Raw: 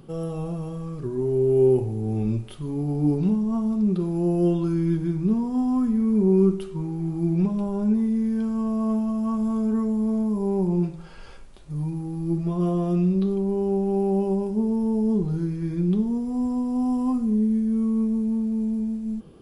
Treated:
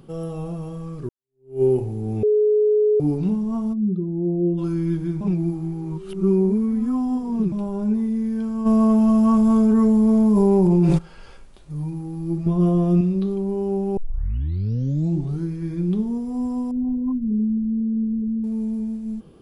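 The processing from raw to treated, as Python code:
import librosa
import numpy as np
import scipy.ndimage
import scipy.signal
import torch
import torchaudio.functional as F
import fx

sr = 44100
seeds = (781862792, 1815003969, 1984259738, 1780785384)

y = fx.spec_expand(x, sr, power=1.6, at=(3.72, 4.57), fade=0.02)
y = fx.env_flatten(y, sr, amount_pct=100, at=(8.65, 10.97), fade=0.02)
y = fx.low_shelf(y, sr, hz=320.0, db=8.0, at=(12.46, 13.01))
y = fx.envelope_sharpen(y, sr, power=3.0, at=(16.71, 18.44))
y = fx.edit(y, sr, fx.fade_in_span(start_s=1.09, length_s=0.53, curve='exp'),
    fx.bleep(start_s=2.23, length_s=0.77, hz=423.0, db=-14.0),
    fx.reverse_span(start_s=5.21, length_s=2.31),
    fx.tape_start(start_s=13.97, length_s=1.46), tone=tone)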